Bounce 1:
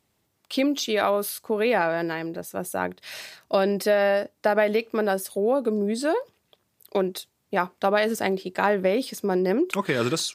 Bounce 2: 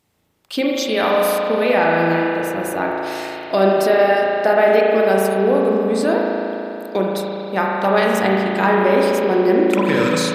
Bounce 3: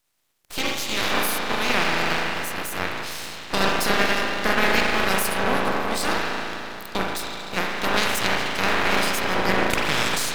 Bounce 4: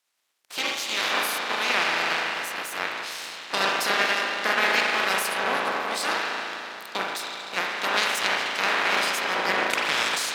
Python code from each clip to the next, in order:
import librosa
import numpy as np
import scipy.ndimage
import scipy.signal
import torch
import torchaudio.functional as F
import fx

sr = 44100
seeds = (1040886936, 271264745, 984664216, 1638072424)

y1 = fx.rev_spring(x, sr, rt60_s=3.2, pass_ms=(36,), chirp_ms=45, drr_db=-3.0)
y1 = y1 * 10.0 ** (3.0 / 20.0)
y2 = fx.spec_clip(y1, sr, under_db=24)
y2 = np.maximum(y2, 0.0)
y2 = y2 * 10.0 ** (-2.5 / 20.0)
y3 = fx.weighting(y2, sr, curve='A')
y3 = y3 * 10.0 ** (-1.5 / 20.0)